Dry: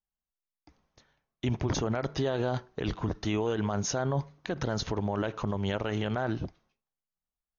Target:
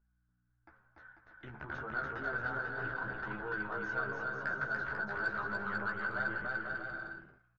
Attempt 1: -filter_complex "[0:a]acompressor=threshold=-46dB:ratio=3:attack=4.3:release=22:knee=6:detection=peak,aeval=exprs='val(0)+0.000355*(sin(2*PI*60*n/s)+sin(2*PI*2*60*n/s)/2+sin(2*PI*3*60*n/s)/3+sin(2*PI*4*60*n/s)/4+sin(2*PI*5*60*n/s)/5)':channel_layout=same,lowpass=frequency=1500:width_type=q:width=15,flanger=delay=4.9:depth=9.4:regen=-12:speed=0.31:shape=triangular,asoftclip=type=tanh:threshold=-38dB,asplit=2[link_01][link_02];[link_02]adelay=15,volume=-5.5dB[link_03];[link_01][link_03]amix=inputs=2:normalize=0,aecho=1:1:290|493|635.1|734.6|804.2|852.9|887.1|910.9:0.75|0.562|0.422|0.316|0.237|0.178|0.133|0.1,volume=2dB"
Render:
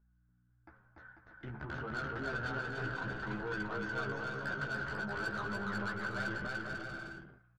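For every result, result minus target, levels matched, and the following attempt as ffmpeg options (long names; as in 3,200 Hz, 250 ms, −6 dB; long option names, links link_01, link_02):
soft clipping: distortion +11 dB; 125 Hz band +6.5 dB
-filter_complex "[0:a]acompressor=threshold=-46dB:ratio=3:attack=4.3:release=22:knee=6:detection=peak,aeval=exprs='val(0)+0.000355*(sin(2*PI*60*n/s)+sin(2*PI*2*60*n/s)/2+sin(2*PI*3*60*n/s)/3+sin(2*PI*4*60*n/s)/4+sin(2*PI*5*60*n/s)/5)':channel_layout=same,lowpass=frequency=1500:width_type=q:width=15,flanger=delay=4.9:depth=9.4:regen=-12:speed=0.31:shape=triangular,asoftclip=type=tanh:threshold=-29dB,asplit=2[link_01][link_02];[link_02]adelay=15,volume=-5.5dB[link_03];[link_01][link_03]amix=inputs=2:normalize=0,aecho=1:1:290|493|635.1|734.6|804.2|852.9|887.1|910.9:0.75|0.562|0.422|0.316|0.237|0.178|0.133|0.1,volume=2dB"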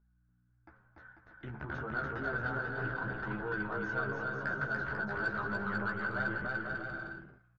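125 Hz band +5.5 dB
-filter_complex "[0:a]acompressor=threshold=-46dB:ratio=3:attack=4.3:release=22:knee=6:detection=peak,aeval=exprs='val(0)+0.000355*(sin(2*PI*60*n/s)+sin(2*PI*2*60*n/s)/2+sin(2*PI*3*60*n/s)/3+sin(2*PI*4*60*n/s)/4+sin(2*PI*5*60*n/s)/5)':channel_layout=same,lowpass=frequency=1500:width_type=q:width=15,equalizer=frequency=130:width=0.31:gain=-7,flanger=delay=4.9:depth=9.4:regen=-12:speed=0.31:shape=triangular,asoftclip=type=tanh:threshold=-29dB,asplit=2[link_01][link_02];[link_02]adelay=15,volume=-5.5dB[link_03];[link_01][link_03]amix=inputs=2:normalize=0,aecho=1:1:290|493|635.1|734.6|804.2|852.9|887.1|910.9:0.75|0.562|0.422|0.316|0.237|0.178|0.133|0.1,volume=2dB"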